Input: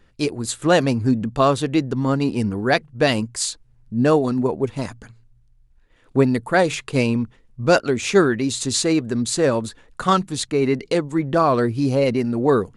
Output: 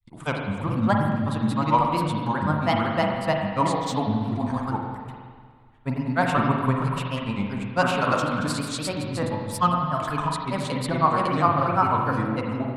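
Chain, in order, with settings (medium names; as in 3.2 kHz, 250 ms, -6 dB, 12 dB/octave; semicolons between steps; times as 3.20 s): granulator 100 ms, spray 511 ms, pitch spread up and down by 3 st; fifteen-band graphic EQ 160 Hz +4 dB, 400 Hz -12 dB, 1 kHz +11 dB, 6.3 kHz -8 dB; spring tank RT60 1.8 s, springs 40/46 ms, chirp 40 ms, DRR 0.5 dB; trim -5 dB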